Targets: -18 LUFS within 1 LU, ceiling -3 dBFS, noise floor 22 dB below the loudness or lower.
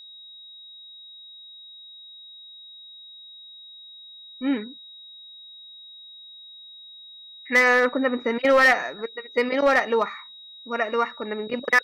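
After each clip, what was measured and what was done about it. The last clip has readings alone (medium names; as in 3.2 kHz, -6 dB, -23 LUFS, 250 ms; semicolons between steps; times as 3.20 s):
clipped samples 0.4%; clipping level -12.0 dBFS; steady tone 3.8 kHz; tone level -42 dBFS; loudness -22.0 LUFS; peak level -12.0 dBFS; loudness target -18.0 LUFS
-> clip repair -12 dBFS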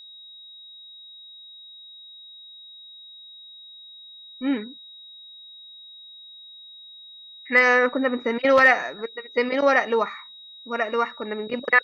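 clipped samples 0.0%; steady tone 3.8 kHz; tone level -42 dBFS
-> band-stop 3.8 kHz, Q 30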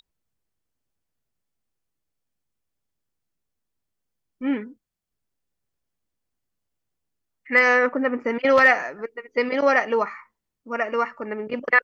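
steady tone not found; loudness -21.0 LUFS; peak level -3.0 dBFS; loudness target -18.0 LUFS
-> trim +3 dB; peak limiter -3 dBFS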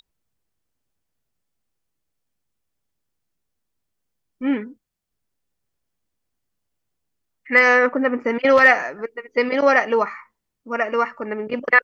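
loudness -18.0 LUFS; peak level -3.0 dBFS; noise floor -78 dBFS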